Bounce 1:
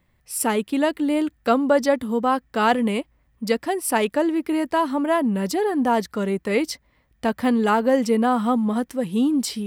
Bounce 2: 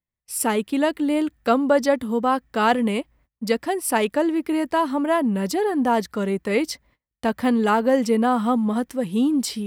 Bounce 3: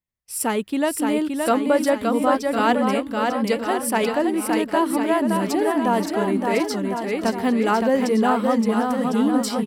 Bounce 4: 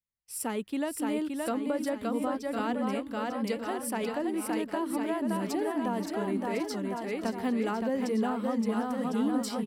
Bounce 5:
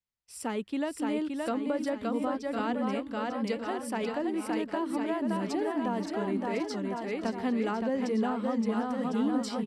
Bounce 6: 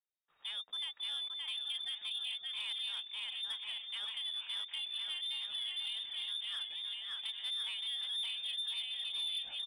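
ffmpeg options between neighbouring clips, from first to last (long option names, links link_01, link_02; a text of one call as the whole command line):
ffmpeg -i in.wav -af "agate=range=-27dB:threshold=-54dB:ratio=16:detection=peak" out.wav
ffmpeg -i in.wav -af "aecho=1:1:570|1054|1466|1816|2114:0.631|0.398|0.251|0.158|0.1,volume=-1dB" out.wav
ffmpeg -i in.wav -filter_complex "[0:a]acrossover=split=360[link_01][link_02];[link_02]acompressor=threshold=-23dB:ratio=4[link_03];[link_01][link_03]amix=inputs=2:normalize=0,volume=-8.5dB" out.wav
ffmpeg -i in.wav -af "lowpass=6900" out.wav
ffmpeg -i in.wav -af "lowpass=frequency=3200:width_type=q:width=0.5098,lowpass=frequency=3200:width_type=q:width=0.6013,lowpass=frequency=3200:width_type=q:width=0.9,lowpass=frequency=3200:width_type=q:width=2.563,afreqshift=-3800,asoftclip=type=tanh:threshold=-24.5dB,volume=-8dB" out.wav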